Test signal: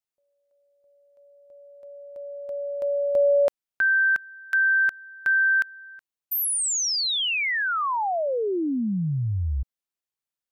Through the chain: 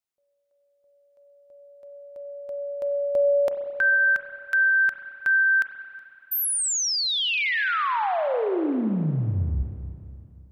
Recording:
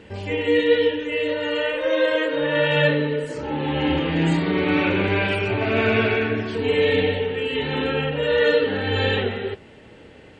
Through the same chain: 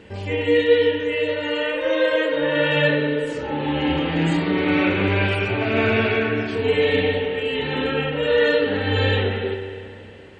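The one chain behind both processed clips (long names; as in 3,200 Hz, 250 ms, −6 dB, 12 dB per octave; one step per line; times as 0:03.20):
spring reverb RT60 2.6 s, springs 31/44 ms, chirp 70 ms, DRR 6.5 dB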